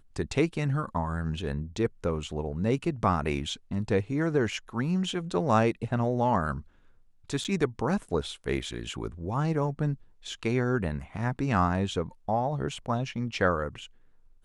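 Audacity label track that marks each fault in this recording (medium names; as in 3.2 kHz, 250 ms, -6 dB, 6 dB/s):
7.440000	7.450000	dropout 8.2 ms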